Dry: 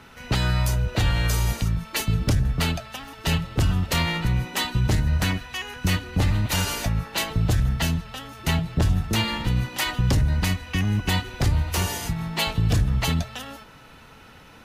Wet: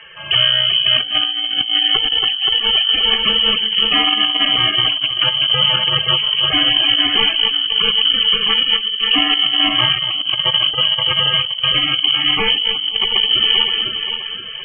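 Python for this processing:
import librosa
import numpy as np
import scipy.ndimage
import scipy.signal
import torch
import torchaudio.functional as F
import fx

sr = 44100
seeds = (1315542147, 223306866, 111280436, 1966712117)

p1 = fx.reverse_delay_fb(x, sr, ms=262, feedback_pct=63, wet_db=-2)
p2 = fx.spec_topn(p1, sr, count=64)
p3 = fx.freq_invert(p2, sr, carrier_hz=3100)
p4 = fx.hum_notches(p3, sr, base_hz=50, count=4)
p5 = p4 + fx.echo_single(p4, sr, ms=84, db=-23.0, dry=0)
p6 = fx.over_compress(p5, sr, threshold_db=-21.0, ratio=-0.5)
y = p6 * 10.0 ** (6.0 / 20.0)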